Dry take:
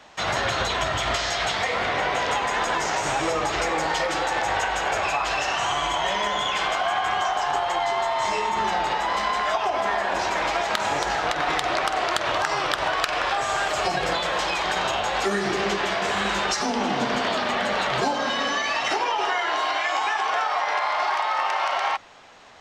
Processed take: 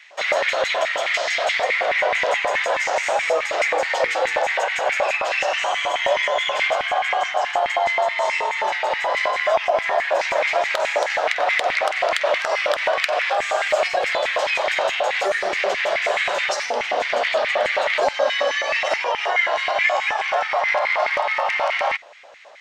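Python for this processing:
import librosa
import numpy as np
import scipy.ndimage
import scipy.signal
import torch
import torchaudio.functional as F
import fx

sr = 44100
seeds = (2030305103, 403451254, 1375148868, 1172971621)

y = fx.filter_lfo_highpass(x, sr, shape='square', hz=4.7, low_hz=570.0, high_hz=2100.0, q=6.0)
y = fx.hum_notches(y, sr, base_hz=60, count=8, at=(3.95, 4.35))
y = F.gain(torch.from_numpy(y), -2.0).numpy()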